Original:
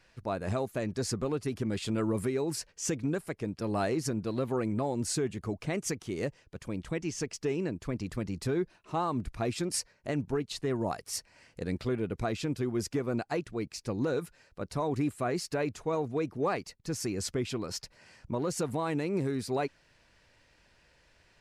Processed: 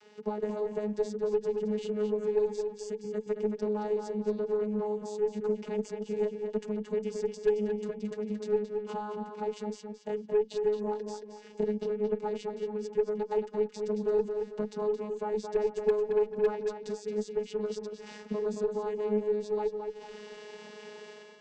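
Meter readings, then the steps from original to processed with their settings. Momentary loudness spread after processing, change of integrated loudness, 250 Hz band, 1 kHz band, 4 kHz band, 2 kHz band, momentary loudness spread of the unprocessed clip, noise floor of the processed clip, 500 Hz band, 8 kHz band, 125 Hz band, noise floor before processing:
10 LU, +1.0 dB, -3.5 dB, -3.0 dB, -9.5 dB, -7.5 dB, 6 LU, -51 dBFS, +5.0 dB, under -10 dB, under -10 dB, -66 dBFS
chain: treble shelf 3.2 kHz +12 dB; level rider; in parallel at 0 dB: peak limiter -20 dBFS, peak gain reduction 17.5 dB; on the sum: transient shaper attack -1 dB, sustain -7 dB; compression 10:1, threshold -35 dBFS, peak gain reduction 25 dB; vocoder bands 16, saw 210 Hz; small resonant body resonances 440/870/2900 Hz, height 17 dB, ringing for 90 ms; Chebyshev shaper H 4 -20 dB, 6 -28 dB, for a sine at -18.5 dBFS; on a send: filtered feedback delay 222 ms, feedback 39%, low-pass 4.6 kHz, level -6 dB

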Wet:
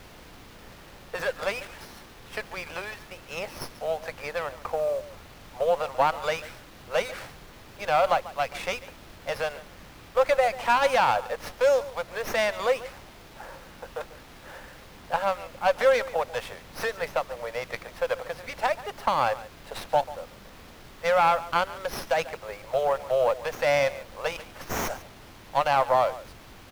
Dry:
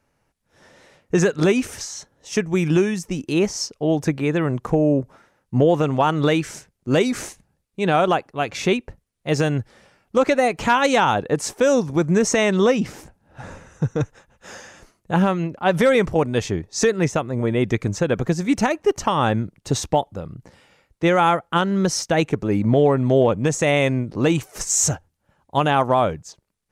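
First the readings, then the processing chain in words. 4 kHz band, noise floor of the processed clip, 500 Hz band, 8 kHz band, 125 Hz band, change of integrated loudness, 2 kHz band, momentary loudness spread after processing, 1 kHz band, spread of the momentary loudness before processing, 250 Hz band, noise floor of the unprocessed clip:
-6.5 dB, -49 dBFS, -6.0 dB, -16.0 dB, -21.5 dB, -7.0 dB, -4.5 dB, 21 LU, -3.0 dB, 10 LU, -24.0 dB, -72 dBFS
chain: Chebyshev high-pass 520 Hz, order 5; level-controlled noise filter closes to 2.4 kHz, open at -19 dBFS; treble shelf 5 kHz -5.5 dB; level rider gain up to 3.5 dB; added noise pink -41 dBFS; delay 141 ms -17 dB; sliding maximum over 5 samples; trim -5.5 dB

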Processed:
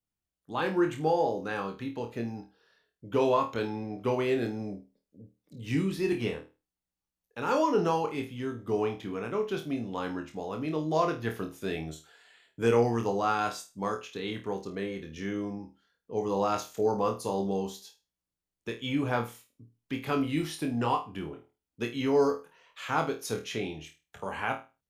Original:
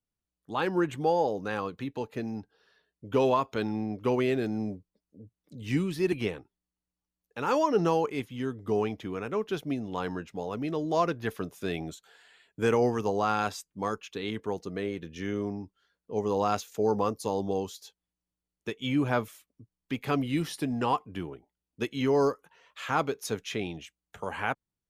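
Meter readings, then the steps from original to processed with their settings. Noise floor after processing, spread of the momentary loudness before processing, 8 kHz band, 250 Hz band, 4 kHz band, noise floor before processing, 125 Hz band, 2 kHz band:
under -85 dBFS, 14 LU, -0.5 dB, -1.0 dB, -0.5 dB, under -85 dBFS, -1.0 dB, -0.5 dB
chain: flutter echo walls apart 4.4 m, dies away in 0.29 s; trim -2 dB

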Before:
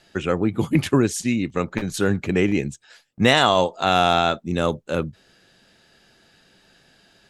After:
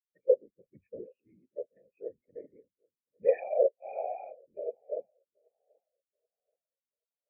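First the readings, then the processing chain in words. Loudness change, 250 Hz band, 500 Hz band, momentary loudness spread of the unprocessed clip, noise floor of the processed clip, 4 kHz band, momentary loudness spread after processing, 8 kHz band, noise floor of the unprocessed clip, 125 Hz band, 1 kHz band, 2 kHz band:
-11.0 dB, under -30 dB, -7.5 dB, 10 LU, under -85 dBFS, under -40 dB, 21 LU, under -40 dB, -58 dBFS, under -40 dB, -22.0 dB, -30.5 dB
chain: knee-point frequency compression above 2.1 kHz 4:1; cascade formant filter e; peaking EQ 710 Hz +8.5 dB 0.25 oct; hum notches 50/100/150 Hz; hard clipper -18 dBFS, distortion -23 dB; whisper effect; on a send: feedback echo behind a low-pass 780 ms, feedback 52%, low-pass 2.1 kHz, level -14 dB; on the sum: spectral contrast expander 2.5:1

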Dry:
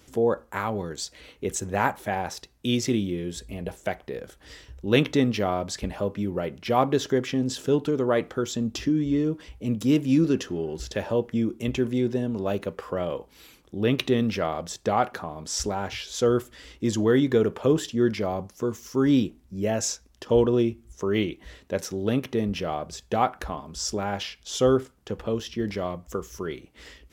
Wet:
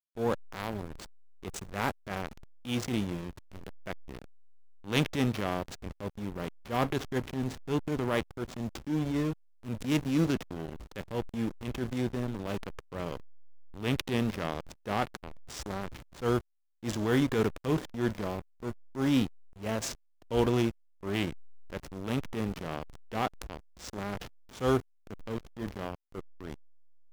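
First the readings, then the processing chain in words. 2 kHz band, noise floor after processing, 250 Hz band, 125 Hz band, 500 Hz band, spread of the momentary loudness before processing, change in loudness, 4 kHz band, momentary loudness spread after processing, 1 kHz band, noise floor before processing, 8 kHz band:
-4.5 dB, -64 dBFS, -7.0 dB, -4.5 dB, -9.5 dB, 12 LU, -7.0 dB, -6.5 dB, 16 LU, -7.5 dB, -58 dBFS, -11.0 dB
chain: formants flattened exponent 0.6; hysteresis with a dead band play -22 dBFS; transient shaper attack -10 dB, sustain +2 dB; trim -4 dB

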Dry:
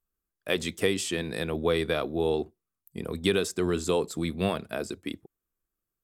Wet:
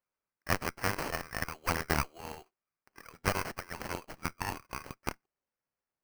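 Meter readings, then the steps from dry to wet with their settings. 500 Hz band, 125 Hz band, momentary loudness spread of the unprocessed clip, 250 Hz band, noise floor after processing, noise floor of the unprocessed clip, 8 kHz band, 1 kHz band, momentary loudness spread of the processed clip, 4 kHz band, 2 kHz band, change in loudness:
-13.5 dB, -5.0 dB, 13 LU, -11.5 dB, under -85 dBFS, under -85 dBFS, -4.5 dB, +1.5 dB, 15 LU, -8.5 dB, -1.0 dB, -7.0 dB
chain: high-pass sweep 1.2 kHz -> 2.4 kHz, 2.58–3.99 s; Chebyshev shaper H 6 -6 dB, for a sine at -9 dBFS; sample-rate reducer 3.6 kHz, jitter 0%; trim -6 dB

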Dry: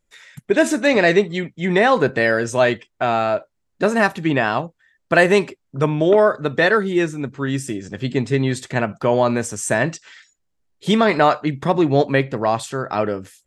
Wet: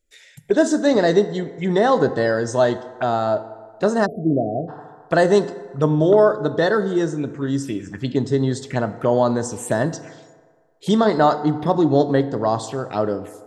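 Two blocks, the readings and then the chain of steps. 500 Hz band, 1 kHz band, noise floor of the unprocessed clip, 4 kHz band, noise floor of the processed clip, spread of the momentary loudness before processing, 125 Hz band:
0.0 dB, -1.5 dB, -72 dBFS, -4.0 dB, -51 dBFS, 9 LU, -0.5 dB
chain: touch-sensitive phaser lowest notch 160 Hz, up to 2.4 kHz, full sweep at -19 dBFS; FDN reverb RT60 1.7 s, low-frequency decay 0.7×, high-frequency decay 0.5×, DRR 11.5 dB; spectral selection erased 4.06–4.68 s, 750–10000 Hz

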